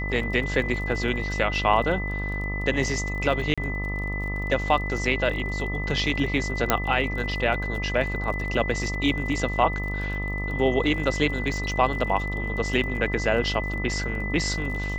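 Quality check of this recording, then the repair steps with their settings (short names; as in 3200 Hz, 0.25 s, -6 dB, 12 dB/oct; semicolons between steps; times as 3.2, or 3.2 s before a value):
buzz 50 Hz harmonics 26 -30 dBFS
crackle 32/s -34 dBFS
tone 2000 Hz -31 dBFS
3.54–3.58 gap 36 ms
6.7 pop -3 dBFS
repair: de-click; notch 2000 Hz, Q 30; de-hum 50 Hz, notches 26; interpolate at 3.54, 36 ms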